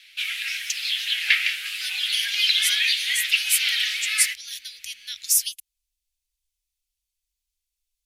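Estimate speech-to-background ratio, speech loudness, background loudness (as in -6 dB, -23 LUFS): -4.5 dB, -26.5 LUFS, -22.0 LUFS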